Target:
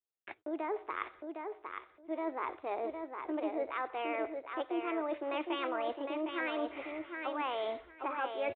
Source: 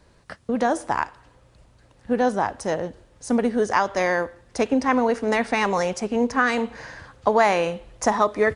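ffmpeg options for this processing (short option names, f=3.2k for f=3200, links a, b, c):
-filter_complex "[0:a]agate=range=-44dB:threshold=-45dB:ratio=16:detection=peak,lowshelf=f=200:t=q:w=3:g=-11,areverse,acompressor=threshold=-26dB:ratio=6,areverse,asetrate=57191,aresample=44100,atempo=0.771105,aresample=8000,aresample=44100,asplit=2[a][b];[b]aecho=0:1:759|1518|2277:0.531|0.0903|0.0153[c];[a][c]amix=inputs=2:normalize=0,volume=-7.5dB"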